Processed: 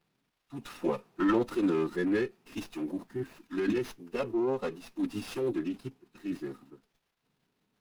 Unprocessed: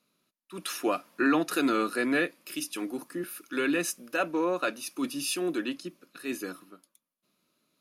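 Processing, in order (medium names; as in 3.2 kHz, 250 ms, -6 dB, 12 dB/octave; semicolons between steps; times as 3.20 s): tilt shelf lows +5.5 dB, about 790 Hz; crackle 510 per s -59 dBFS; formant-preserving pitch shift -5.5 st; sliding maximum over 5 samples; trim -3.5 dB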